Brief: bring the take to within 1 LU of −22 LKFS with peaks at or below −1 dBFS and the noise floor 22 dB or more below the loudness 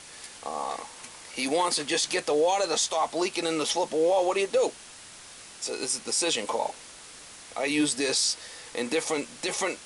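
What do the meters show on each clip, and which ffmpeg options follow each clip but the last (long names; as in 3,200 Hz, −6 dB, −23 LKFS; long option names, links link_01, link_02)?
background noise floor −47 dBFS; target noise floor −49 dBFS; integrated loudness −27.0 LKFS; sample peak −13.5 dBFS; target loudness −22.0 LKFS
→ -af "afftdn=noise_reduction=6:noise_floor=-47"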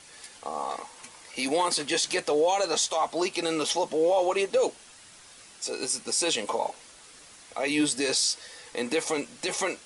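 background noise floor −51 dBFS; integrated loudness −27.0 LKFS; sample peak −13.5 dBFS; target loudness −22.0 LKFS
→ -af "volume=5dB"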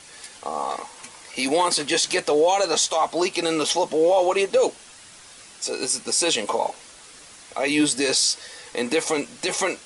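integrated loudness −22.0 LKFS; sample peak −8.5 dBFS; background noise floor −46 dBFS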